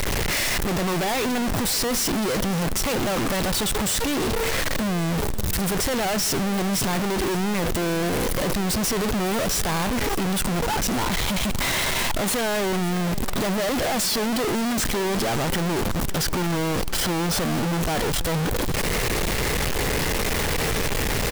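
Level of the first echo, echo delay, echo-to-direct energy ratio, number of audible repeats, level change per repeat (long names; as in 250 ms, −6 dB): −17.5 dB, 557 ms, −16.0 dB, 3, −5.5 dB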